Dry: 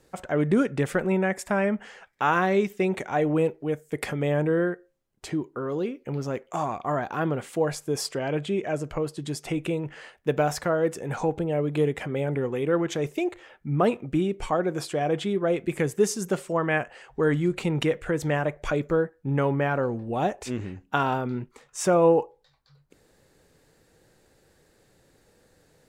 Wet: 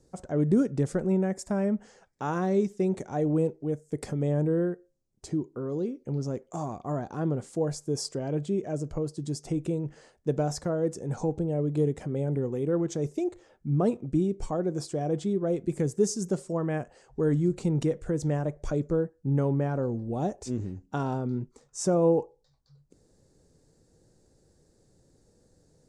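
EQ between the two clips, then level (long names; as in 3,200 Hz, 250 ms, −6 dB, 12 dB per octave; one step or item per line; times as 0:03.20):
low-pass filter 9,800 Hz 24 dB per octave
tilt shelving filter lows +9 dB, about 770 Hz
high shelf with overshoot 3,900 Hz +12 dB, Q 1.5
−7.5 dB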